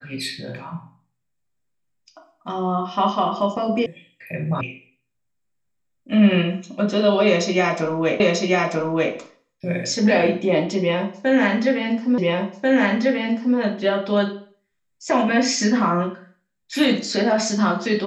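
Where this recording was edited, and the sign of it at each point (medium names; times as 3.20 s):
3.86 s: sound stops dead
4.61 s: sound stops dead
8.20 s: repeat of the last 0.94 s
12.18 s: repeat of the last 1.39 s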